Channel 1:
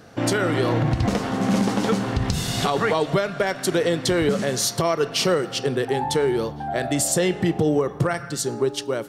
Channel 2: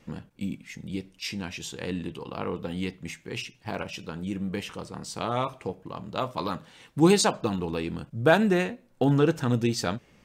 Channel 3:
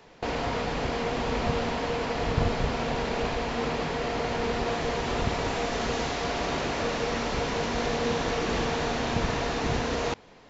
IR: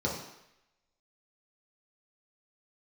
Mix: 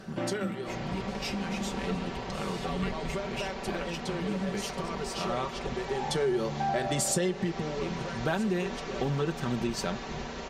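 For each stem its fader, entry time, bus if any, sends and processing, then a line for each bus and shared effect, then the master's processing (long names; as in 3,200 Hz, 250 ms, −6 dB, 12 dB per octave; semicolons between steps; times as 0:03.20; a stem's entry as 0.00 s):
−0.5 dB, 0.00 s, no send, high-shelf EQ 12,000 Hz −11 dB; automatic ducking −17 dB, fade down 0.55 s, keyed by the second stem
−4.5 dB, 0.00 s, muted 0:05.68–0:07.81, no send, no processing
−10.5 dB, 0.45 s, no send, no processing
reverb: not used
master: comb filter 5.2 ms, depth 63%; downward compressor 4 to 1, threshold −26 dBFS, peak gain reduction 10 dB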